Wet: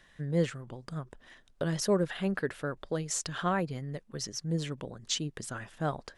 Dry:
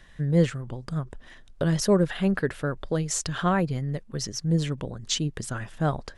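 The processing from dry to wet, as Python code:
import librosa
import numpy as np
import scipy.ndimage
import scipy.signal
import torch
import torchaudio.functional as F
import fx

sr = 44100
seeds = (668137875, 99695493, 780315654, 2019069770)

y = fx.low_shelf(x, sr, hz=130.0, db=-10.5)
y = F.gain(torch.from_numpy(y), -4.5).numpy()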